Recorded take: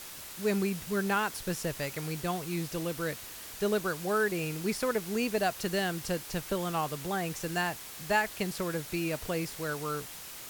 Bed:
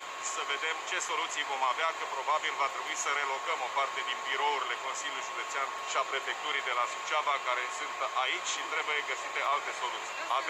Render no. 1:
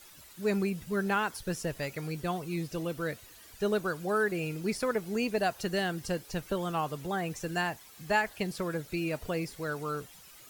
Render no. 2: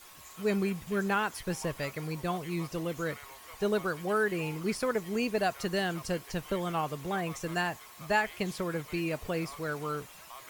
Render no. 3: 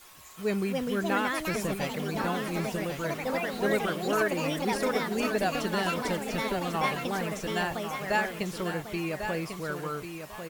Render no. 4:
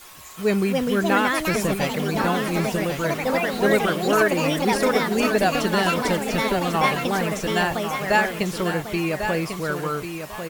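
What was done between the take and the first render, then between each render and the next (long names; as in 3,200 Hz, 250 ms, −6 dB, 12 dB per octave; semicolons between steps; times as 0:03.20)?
broadband denoise 12 dB, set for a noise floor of −45 dBFS
mix in bed −18 dB
delay with pitch and tempo change per echo 379 ms, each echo +4 semitones, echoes 2; repeating echo 1,096 ms, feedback 23%, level −8 dB
level +8 dB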